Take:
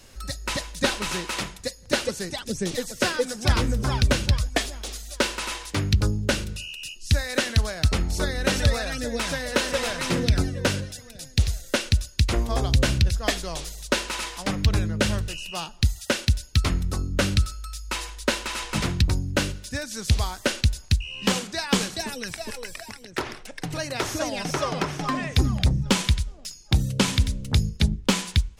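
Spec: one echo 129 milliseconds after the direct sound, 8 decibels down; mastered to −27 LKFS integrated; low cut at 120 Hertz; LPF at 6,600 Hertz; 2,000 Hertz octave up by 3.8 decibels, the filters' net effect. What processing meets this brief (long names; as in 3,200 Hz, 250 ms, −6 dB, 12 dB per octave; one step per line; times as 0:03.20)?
high-pass filter 120 Hz
low-pass filter 6,600 Hz
parametric band 2,000 Hz +5 dB
single-tap delay 129 ms −8 dB
level −1.5 dB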